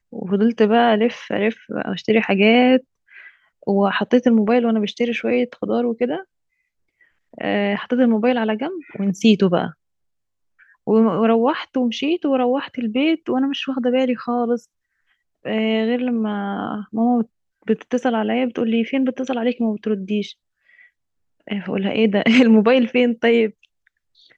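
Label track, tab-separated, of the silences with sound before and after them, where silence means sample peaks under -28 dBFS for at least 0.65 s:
2.780000	3.670000	silence
6.210000	7.380000	silence
9.700000	10.880000	silence
14.580000	15.450000	silence
20.310000	21.480000	silence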